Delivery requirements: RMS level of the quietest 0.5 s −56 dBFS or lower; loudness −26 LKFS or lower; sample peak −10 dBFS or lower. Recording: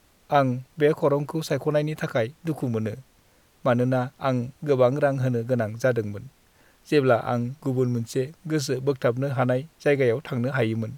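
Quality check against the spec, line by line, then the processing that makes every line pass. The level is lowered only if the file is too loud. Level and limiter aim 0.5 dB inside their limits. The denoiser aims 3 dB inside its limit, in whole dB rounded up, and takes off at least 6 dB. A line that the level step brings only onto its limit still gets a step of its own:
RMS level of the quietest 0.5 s −60 dBFS: in spec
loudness −25.0 LKFS: out of spec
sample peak −7.0 dBFS: out of spec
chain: level −1.5 dB
brickwall limiter −10.5 dBFS

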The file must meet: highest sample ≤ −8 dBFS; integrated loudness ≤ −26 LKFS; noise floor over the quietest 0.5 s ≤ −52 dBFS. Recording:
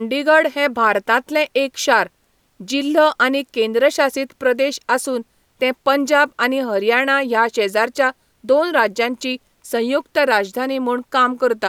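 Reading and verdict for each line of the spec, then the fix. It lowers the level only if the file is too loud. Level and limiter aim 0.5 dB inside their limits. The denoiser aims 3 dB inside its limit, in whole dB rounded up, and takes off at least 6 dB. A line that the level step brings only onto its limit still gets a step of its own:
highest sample −3.0 dBFS: out of spec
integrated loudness −17.5 LKFS: out of spec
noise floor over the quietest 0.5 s −62 dBFS: in spec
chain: level −9 dB

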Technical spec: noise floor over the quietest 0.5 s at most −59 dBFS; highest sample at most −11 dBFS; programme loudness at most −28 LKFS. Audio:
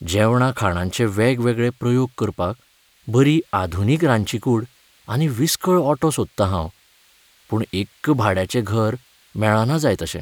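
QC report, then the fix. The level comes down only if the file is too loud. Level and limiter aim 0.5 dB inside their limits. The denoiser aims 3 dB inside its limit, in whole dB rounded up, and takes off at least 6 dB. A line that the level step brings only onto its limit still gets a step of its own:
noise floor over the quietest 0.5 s −57 dBFS: out of spec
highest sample −2.0 dBFS: out of spec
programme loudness −20.0 LKFS: out of spec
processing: level −8.5 dB
brickwall limiter −11.5 dBFS

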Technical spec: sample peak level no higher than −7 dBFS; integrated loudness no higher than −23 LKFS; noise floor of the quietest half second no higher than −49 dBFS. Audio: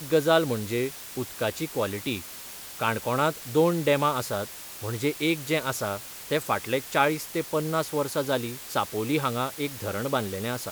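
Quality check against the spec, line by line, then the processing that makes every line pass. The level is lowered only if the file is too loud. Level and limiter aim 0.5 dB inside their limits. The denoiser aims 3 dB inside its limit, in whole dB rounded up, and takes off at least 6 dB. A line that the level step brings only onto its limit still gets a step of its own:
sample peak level −8.0 dBFS: in spec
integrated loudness −27.5 LKFS: in spec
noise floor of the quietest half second −41 dBFS: out of spec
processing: broadband denoise 11 dB, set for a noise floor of −41 dBFS

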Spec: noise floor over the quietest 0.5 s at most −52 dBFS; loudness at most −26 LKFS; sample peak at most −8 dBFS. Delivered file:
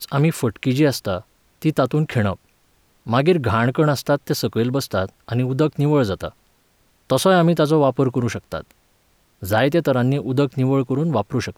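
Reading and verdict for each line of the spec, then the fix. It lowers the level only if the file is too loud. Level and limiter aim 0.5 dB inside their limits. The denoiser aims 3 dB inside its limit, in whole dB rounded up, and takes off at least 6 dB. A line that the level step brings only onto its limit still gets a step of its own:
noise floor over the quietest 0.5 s −60 dBFS: in spec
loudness −20.0 LKFS: out of spec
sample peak −6.0 dBFS: out of spec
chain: level −6.5 dB

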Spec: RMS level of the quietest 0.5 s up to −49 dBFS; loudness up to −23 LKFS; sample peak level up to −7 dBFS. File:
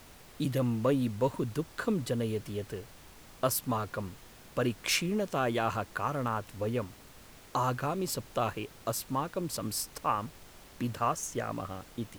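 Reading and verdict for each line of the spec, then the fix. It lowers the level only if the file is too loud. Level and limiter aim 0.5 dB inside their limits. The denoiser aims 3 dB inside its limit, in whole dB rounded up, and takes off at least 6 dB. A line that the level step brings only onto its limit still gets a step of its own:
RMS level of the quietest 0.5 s −53 dBFS: in spec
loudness −33.0 LKFS: in spec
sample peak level −15.0 dBFS: in spec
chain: no processing needed

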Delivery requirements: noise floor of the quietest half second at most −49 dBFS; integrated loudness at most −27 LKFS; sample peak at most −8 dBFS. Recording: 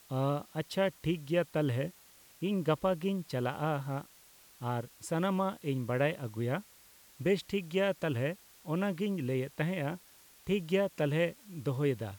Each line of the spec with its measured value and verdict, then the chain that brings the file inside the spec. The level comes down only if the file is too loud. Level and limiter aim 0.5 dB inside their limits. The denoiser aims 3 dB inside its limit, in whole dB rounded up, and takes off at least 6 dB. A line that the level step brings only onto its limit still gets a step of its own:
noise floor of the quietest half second −59 dBFS: in spec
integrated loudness −33.5 LKFS: in spec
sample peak −17.0 dBFS: in spec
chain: no processing needed

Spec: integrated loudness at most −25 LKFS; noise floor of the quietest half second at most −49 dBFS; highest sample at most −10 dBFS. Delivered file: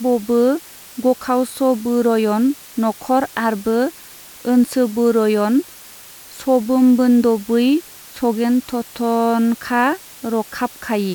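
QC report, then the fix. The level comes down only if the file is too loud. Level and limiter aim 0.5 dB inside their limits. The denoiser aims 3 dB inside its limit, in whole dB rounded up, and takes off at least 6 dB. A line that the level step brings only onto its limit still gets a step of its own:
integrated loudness −18.0 LKFS: out of spec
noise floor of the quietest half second −40 dBFS: out of spec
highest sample −5.0 dBFS: out of spec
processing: broadband denoise 6 dB, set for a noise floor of −40 dBFS
level −7.5 dB

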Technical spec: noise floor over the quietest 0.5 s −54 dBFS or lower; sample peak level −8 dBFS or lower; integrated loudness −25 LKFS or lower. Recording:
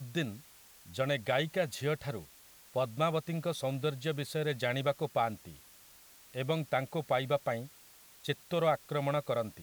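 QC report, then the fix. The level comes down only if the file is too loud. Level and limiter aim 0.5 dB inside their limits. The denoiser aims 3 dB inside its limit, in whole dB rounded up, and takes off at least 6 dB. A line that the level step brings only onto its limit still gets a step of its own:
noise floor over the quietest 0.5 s −58 dBFS: in spec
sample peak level −15.5 dBFS: in spec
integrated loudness −34.0 LKFS: in spec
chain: no processing needed

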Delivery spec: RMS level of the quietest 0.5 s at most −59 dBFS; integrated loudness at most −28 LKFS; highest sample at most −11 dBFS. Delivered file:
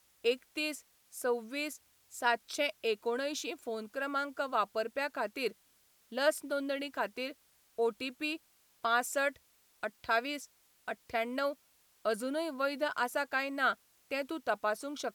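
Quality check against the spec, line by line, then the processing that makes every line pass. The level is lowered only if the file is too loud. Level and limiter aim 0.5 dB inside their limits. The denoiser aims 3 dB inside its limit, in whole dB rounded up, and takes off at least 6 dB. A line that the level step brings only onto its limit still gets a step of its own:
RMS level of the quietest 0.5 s −68 dBFS: in spec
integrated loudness −35.0 LKFS: in spec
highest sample −16.0 dBFS: in spec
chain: no processing needed

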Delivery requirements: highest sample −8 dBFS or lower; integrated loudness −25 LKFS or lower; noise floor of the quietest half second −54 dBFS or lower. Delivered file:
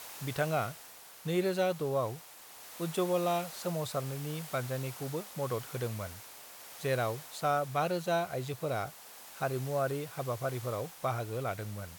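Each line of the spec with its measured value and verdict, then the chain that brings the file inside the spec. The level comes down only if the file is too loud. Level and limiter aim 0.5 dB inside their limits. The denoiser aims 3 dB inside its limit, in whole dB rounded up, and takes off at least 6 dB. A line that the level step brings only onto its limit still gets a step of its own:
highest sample −17.5 dBFS: in spec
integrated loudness −34.5 LKFS: in spec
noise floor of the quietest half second −52 dBFS: out of spec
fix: broadband denoise 6 dB, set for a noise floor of −52 dBFS

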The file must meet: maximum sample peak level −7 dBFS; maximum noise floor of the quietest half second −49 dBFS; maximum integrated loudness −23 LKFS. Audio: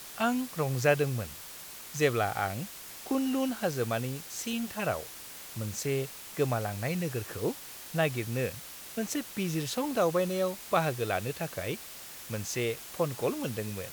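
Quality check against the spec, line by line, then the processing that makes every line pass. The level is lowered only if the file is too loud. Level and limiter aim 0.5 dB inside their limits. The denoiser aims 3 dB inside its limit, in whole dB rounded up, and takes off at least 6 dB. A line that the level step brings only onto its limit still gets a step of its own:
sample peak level −11.5 dBFS: in spec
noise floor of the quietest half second −45 dBFS: out of spec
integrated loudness −32.0 LKFS: in spec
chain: broadband denoise 7 dB, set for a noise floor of −45 dBFS

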